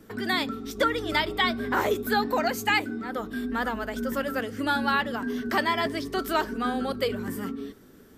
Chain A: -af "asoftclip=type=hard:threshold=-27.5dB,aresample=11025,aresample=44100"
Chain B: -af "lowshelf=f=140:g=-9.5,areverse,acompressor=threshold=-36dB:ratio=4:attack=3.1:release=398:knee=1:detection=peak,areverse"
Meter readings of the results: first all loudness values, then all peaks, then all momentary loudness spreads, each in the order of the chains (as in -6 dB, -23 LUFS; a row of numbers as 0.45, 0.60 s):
-31.5, -39.5 LUFS; -24.0, -26.0 dBFS; 4, 3 LU